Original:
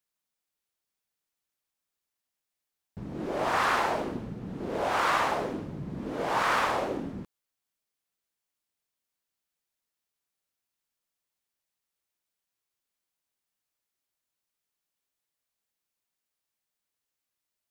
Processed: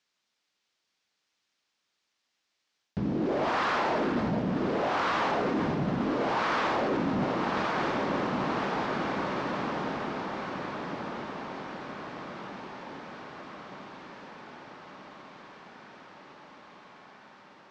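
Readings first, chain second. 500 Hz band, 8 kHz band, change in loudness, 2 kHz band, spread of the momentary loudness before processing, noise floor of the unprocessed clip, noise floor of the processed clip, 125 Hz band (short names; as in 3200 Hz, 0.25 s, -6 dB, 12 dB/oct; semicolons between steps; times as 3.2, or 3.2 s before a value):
+4.0 dB, -5.5 dB, -1.0 dB, +1.0 dB, 13 LU, under -85 dBFS, -80 dBFS, +6.5 dB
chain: in parallel at 0 dB: vocal rider within 3 dB 0.5 s; on the sum: bell 250 Hz +5.5 dB 1.6 oct; non-linear reverb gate 0.46 s rising, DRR 11.5 dB; sample leveller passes 2; LPF 5700 Hz 24 dB/oct; low shelf 81 Hz -8 dB; diffused feedback echo 1.162 s, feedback 61%, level -11 dB; reverse; compressor 16:1, threshold -25 dBFS, peak gain reduction 14 dB; reverse; mismatched tape noise reduction encoder only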